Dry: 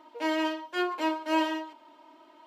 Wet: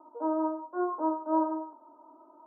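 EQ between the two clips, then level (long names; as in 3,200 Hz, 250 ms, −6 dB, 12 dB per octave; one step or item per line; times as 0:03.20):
high-pass filter 210 Hz 24 dB per octave
Butterworth low-pass 1,300 Hz 72 dB per octave
0.0 dB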